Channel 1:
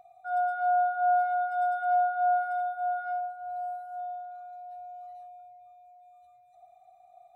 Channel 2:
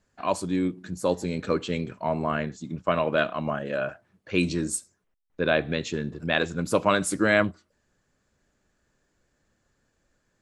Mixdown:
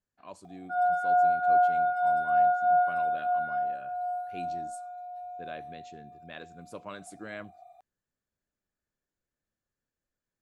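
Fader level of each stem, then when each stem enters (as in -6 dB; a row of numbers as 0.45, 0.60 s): +2.0, -20.0 dB; 0.45, 0.00 s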